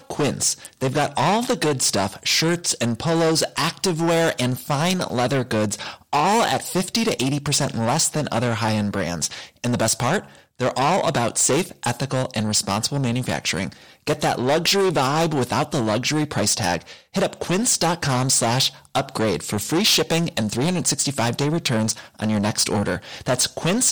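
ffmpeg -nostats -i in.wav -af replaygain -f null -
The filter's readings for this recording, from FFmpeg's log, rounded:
track_gain = +2.5 dB
track_peak = 0.213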